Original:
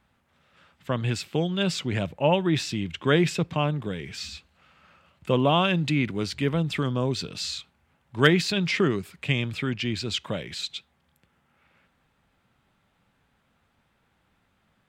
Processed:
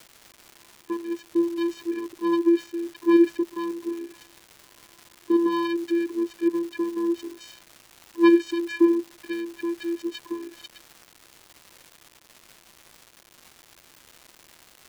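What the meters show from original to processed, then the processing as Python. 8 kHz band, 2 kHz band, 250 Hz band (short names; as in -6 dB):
n/a, -8.0 dB, +5.0 dB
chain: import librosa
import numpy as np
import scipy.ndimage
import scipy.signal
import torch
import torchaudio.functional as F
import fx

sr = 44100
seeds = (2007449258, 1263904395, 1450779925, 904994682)

y = fx.wiener(x, sr, points=15)
y = fx.vocoder(y, sr, bands=8, carrier='square', carrier_hz=339.0)
y = fx.dmg_crackle(y, sr, seeds[0], per_s=430.0, level_db=-38.0)
y = F.gain(torch.from_numpy(y), 2.0).numpy()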